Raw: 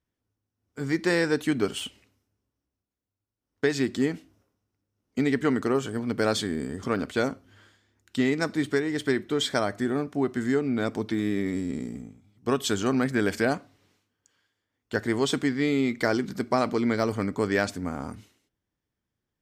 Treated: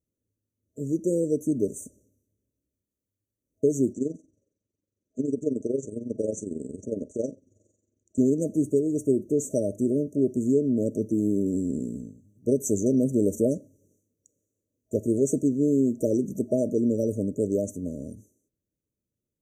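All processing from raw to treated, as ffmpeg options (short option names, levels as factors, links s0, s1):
-filter_complex "[0:a]asettb=1/sr,asplit=3[s0][s1][s2];[s0]atrim=end=3.934[s3];[s1]atrim=start=3.93:end=8.18,asetpts=PTS-STARTPTS,afade=t=in:d=0.004:c=qsin,afade=t=out:st=4.246:d=0.004:c=qsin,lowpass=f=7900:w=0.5412,lowpass=f=7900:w=1.3066,lowshelf=f=260:g=-7,tremolo=f=22:d=0.71[s4];[s2]atrim=start=8.176[s5];[s3][s4]acrossfade=d=0.004:c1=hsin:c2=qsin[s6];[s6][s5]acrossfade=d=0.004:c1=qsin:c2=hsin,afftfilt=real='re*(1-between(b*sr/4096,640,5800))':imag='im*(1-between(b*sr/4096,640,5800))':win_size=4096:overlap=0.75,lowshelf=f=64:g=-5.5,dynaudnorm=f=390:g=13:m=1.41"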